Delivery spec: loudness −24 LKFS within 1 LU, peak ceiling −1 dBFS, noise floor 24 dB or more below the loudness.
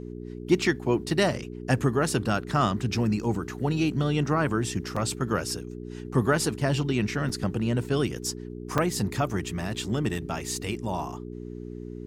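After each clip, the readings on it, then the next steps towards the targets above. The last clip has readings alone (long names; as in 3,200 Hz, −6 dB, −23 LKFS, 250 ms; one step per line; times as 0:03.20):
number of dropouts 4; longest dropout 5.1 ms; mains hum 60 Hz; hum harmonics up to 420 Hz; level of the hum −35 dBFS; integrated loudness −27.0 LKFS; sample peak −8.0 dBFS; target loudness −24.0 LKFS
→ repair the gap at 0:04.96/0:07.29/0:08.78/0:10.18, 5.1 ms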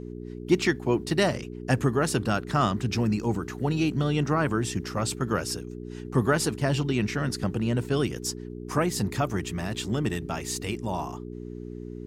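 number of dropouts 0; mains hum 60 Hz; hum harmonics up to 420 Hz; level of the hum −35 dBFS
→ hum removal 60 Hz, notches 7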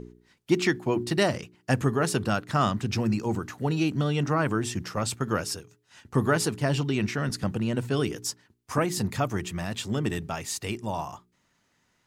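mains hum none found; integrated loudness −28.0 LKFS; sample peak −8.5 dBFS; target loudness −24.0 LKFS
→ level +4 dB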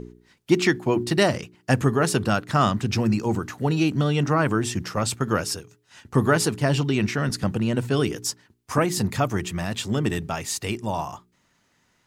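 integrated loudness −24.0 LKFS; sample peak −4.5 dBFS; background noise floor −67 dBFS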